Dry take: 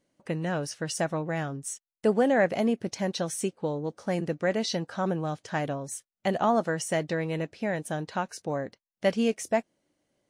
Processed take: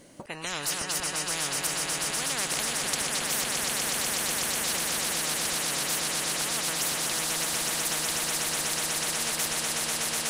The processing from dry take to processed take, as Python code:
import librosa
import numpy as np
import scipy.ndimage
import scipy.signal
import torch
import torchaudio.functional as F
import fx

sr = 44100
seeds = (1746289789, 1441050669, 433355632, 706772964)

y = fx.peak_eq(x, sr, hz=10000.0, db=6.5, octaves=0.94)
y = fx.auto_swell(y, sr, attack_ms=305.0)
y = fx.echo_swell(y, sr, ms=123, loudest=8, wet_db=-10.0)
y = fx.spectral_comp(y, sr, ratio=10.0)